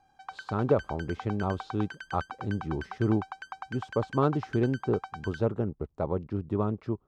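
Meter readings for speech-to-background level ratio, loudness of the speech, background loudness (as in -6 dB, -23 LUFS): 11.5 dB, -31.0 LUFS, -42.5 LUFS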